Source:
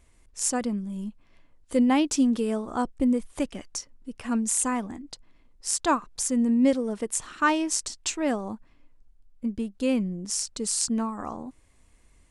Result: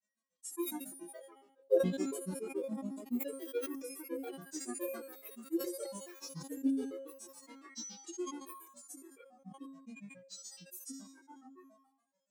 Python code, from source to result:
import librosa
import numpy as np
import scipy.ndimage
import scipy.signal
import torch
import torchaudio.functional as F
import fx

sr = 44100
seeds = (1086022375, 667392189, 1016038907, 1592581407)

p1 = fx.high_shelf(x, sr, hz=4100.0, db=8.5)
p2 = fx.comb_fb(p1, sr, f0_hz=250.0, decay_s=0.46, harmonics='odd', damping=0.0, mix_pct=100)
p3 = fx.echo_pitch(p2, sr, ms=288, semitones=4, count=3, db_per_echo=-3.0)
p4 = p3 + fx.echo_wet_bandpass(p3, sr, ms=192, feedback_pct=41, hz=1400.0, wet_db=-5.5, dry=0)
p5 = fx.granulator(p4, sr, seeds[0], grain_ms=100.0, per_s=7.1, spray_ms=15.0, spread_st=7)
p6 = scipy.signal.sosfilt(scipy.signal.butter(2, 160.0, 'highpass', fs=sr, output='sos'), p5)
p7 = fx.peak_eq(p6, sr, hz=520.0, db=9.0, octaves=0.28)
p8 = fx.comb_fb(p7, sr, f0_hz=270.0, decay_s=0.7, harmonics='all', damping=0.0, mix_pct=70)
p9 = fx.small_body(p8, sr, hz=(350.0, 500.0, 1100.0, 3900.0), ring_ms=50, db=7)
p10 = fx.sustainer(p9, sr, db_per_s=63.0)
y = p10 * 10.0 ** (5.0 / 20.0)